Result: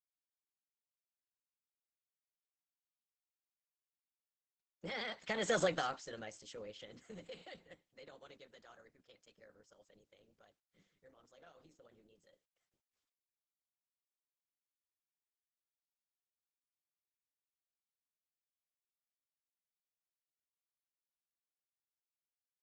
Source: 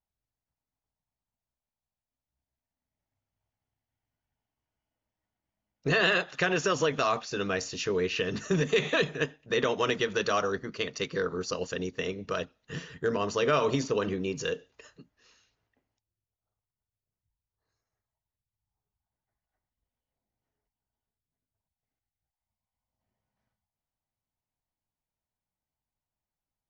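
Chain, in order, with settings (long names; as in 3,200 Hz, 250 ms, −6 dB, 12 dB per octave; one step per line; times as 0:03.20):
source passing by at 0:06.60, 9 m/s, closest 1.6 metres
speed change +18%
level −3.5 dB
Opus 10 kbit/s 48,000 Hz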